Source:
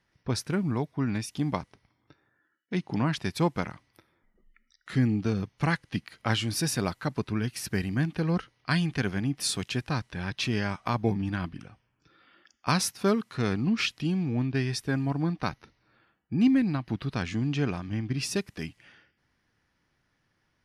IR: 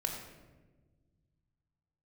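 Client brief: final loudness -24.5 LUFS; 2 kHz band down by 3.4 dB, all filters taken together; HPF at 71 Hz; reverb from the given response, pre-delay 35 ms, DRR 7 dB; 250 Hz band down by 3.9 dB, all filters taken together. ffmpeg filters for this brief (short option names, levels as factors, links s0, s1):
-filter_complex "[0:a]highpass=71,equalizer=f=250:t=o:g=-5,equalizer=f=2000:t=o:g=-4.5,asplit=2[s0][s1];[1:a]atrim=start_sample=2205,adelay=35[s2];[s1][s2]afir=irnorm=-1:irlink=0,volume=0.335[s3];[s0][s3]amix=inputs=2:normalize=0,volume=2.11"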